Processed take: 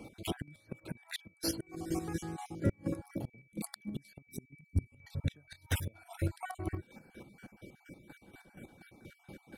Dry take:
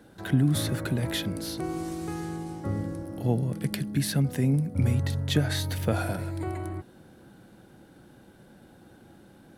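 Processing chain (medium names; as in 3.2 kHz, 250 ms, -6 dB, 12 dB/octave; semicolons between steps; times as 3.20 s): random holes in the spectrogram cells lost 35%; reverb removal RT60 0.67 s; spectral selection erased 4.28–4.91 s, 430–3700 Hz; inverted gate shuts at -22 dBFS, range -33 dB; in parallel at -10 dB: saturation -30.5 dBFS, distortion -12 dB; on the sum: whistle 2.3 kHz -61 dBFS; square tremolo 4.2 Hz, depth 65%, duty 35%; trim +2.5 dB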